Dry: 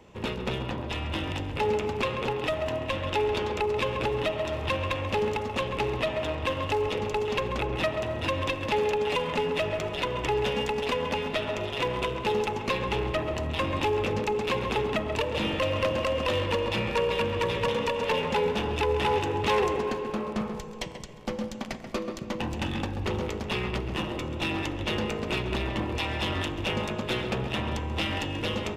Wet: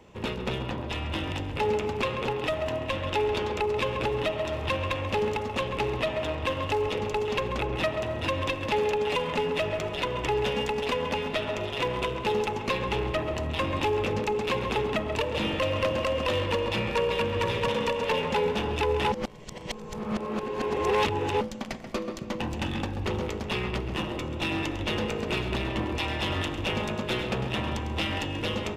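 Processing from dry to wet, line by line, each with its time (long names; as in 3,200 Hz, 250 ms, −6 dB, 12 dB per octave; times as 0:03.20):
0:17.29–0:17.93: flutter between parallel walls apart 10.4 metres, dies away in 0.4 s
0:19.12–0:21.41: reverse
0:24.37–0:27.94: single-tap delay 101 ms −11 dB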